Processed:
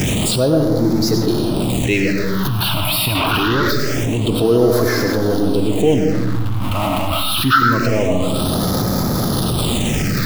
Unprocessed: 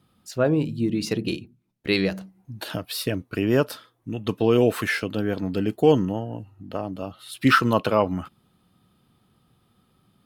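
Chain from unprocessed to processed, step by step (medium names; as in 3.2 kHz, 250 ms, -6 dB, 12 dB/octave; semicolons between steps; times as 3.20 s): jump at every zero crossing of -23 dBFS; dynamic bell 200 Hz, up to -6 dB, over -35 dBFS, Q 2.9; on a send at -2.5 dB: reverberation RT60 1.0 s, pre-delay 60 ms; 3.15–3.71 s: on the sum: overdrive pedal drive 27 dB, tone 2.9 kHz, clips at -9 dBFS; phase shifter stages 6, 0.25 Hz, lowest notch 450–2700 Hz; in parallel at +0.5 dB: compressor with a negative ratio -30 dBFS, ratio -1; 6.12–7.08 s: on the sum: hysteresis with a dead band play -30 dBFS; trim +2.5 dB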